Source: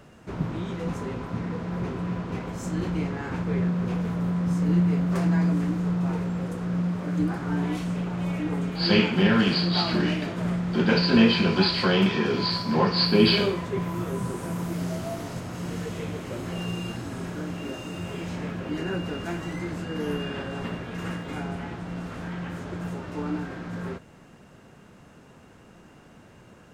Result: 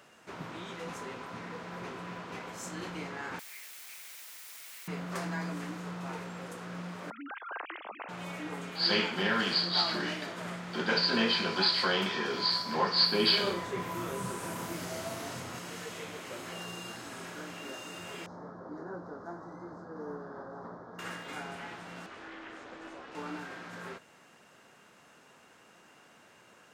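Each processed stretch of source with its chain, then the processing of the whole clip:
3.39–4.88 ladder band-pass 2500 Hz, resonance 60% + requantised 8-bit, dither triangular
7.1–8.09 sine-wave speech + HPF 590 Hz
13.43–15.59 low shelf 270 Hz +8 dB + doubler 32 ms -4 dB
18.26–20.99 Chebyshev band-stop 1100–6100 Hz + air absorption 290 m
22.06–23.15 air absorption 74 m + ring modulator 150 Hz
whole clip: HPF 1100 Hz 6 dB/oct; dynamic EQ 2600 Hz, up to -7 dB, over -48 dBFS, Q 3.2

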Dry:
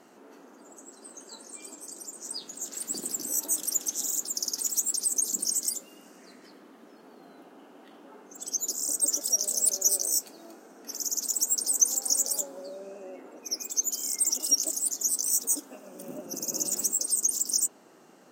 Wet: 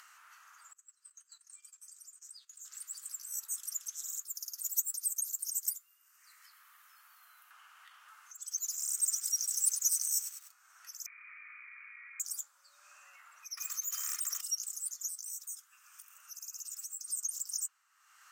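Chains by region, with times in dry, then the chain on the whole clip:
0.73–2.65 passive tone stack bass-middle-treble 5-5-5 + gate -55 dBFS, range -14 dB
4.22–7.51 bell 14000 Hz +13.5 dB 0.83 oct + upward expander, over -32 dBFS
8.08–10.52 tone controls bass +13 dB, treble +5 dB + lo-fi delay 99 ms, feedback 55%, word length 6-bit, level -9 dB
11.06–12.2 inverted band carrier 2700 Hz + fast leveller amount 100%
13.57–14.41 minimum comb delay 1.6 ms + fast leveller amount 70%
15.1–17.06 HPF 1100 Hz + compressor 3:1, threshold -29 dBFS
whole clip: elliptic high-pass 1200 Hz, stop band 80 dB; bell 3900 Hz -5 dB 1.1 oct; upward compressor, threshold -37 dBFS; gain -8.5 dB

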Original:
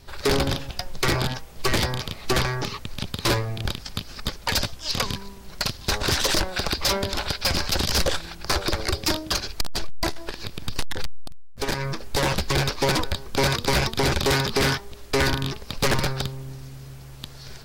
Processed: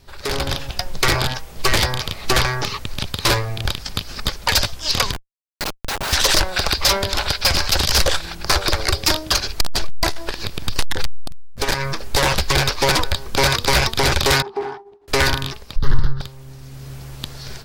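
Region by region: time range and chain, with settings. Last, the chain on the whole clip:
5.12–6.13 HPF 630 Hz 24 dB/oct + Schmitt trigger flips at -29.5 dBFS
14.42–15.08 expander -34 dBFS + double band-pass 560 Hz, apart 1 oct
15.76–16.21 tilt -3.5 dB/oct + fixed phaser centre 2400 Hz, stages 6
whole clip: dynamic EQ 230 Hz, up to -8 dB, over -39 dBFS, Q 0.71; AGC gain up to 9 dB; gain -1.5 dB

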